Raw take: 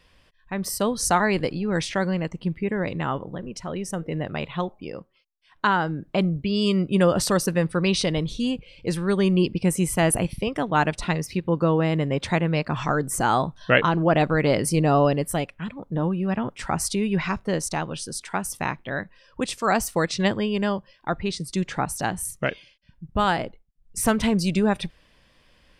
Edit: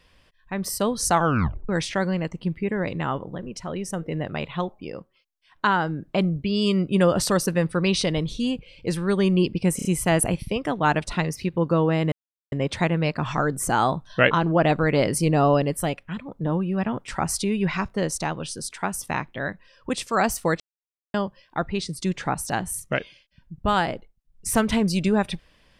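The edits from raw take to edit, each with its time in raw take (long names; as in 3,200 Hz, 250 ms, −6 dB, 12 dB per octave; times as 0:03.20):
0:01.13: tape stop 0.56 s
0:09.76: stutter 0.03 s, 4 plays
0:12.03: splice in silence 0.40 s
0:20.11–0:20.65: silence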